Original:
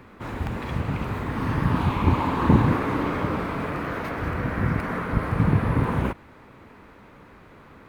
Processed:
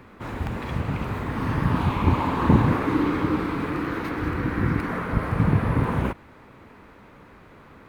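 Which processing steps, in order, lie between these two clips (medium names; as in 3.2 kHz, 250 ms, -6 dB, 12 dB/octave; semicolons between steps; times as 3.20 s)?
2.87–4.90 s: graphic EQ with 31 bands 315 Hz +9 dB, 630 Hz -9 dB, 4 kHz +3 dB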